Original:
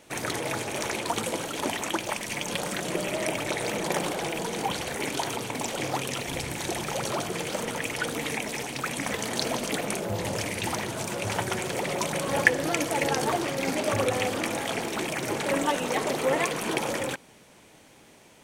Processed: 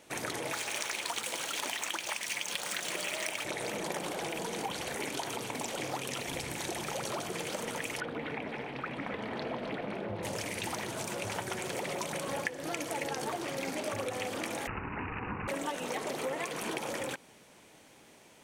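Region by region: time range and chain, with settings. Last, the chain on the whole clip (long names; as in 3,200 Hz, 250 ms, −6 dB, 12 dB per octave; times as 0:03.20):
0:00.52–0:03.45: running median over 3 samples + tilt shelving filter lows −8.5 dB, about 810 Hz
0:08.00–0:10.23: high-frequency loss of the air 420 metres + echo with a time of its own for lows and highs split 1,300 Hz, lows 149 ms, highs 260 ms, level −9 dB
0:14.67–0:15.48: ring modulation 620 Hz + parametric band 91 Hz +12 dB 2.1 octaves + bad sample-rate conversion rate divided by 8×, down none, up filtered
whole clip: downward compressor 5 to 1, threshold −29 dBFS; low-shelf EQ 140 Hz −5.5 dB; level −3 dB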